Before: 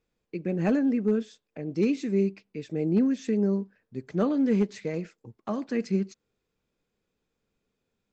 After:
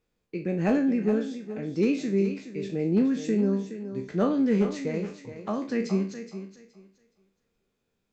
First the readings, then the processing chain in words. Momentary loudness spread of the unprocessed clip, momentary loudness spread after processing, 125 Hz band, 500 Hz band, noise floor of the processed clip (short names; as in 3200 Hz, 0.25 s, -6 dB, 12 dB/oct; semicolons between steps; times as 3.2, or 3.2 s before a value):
15 LU, 12 LU, +0.5 dB, +1.0 dB, -78 dBFS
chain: spectral trails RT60 0.36 s; thinning echo 0.42 s, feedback 22%, high-pass 160 Hz, level -10.5 dB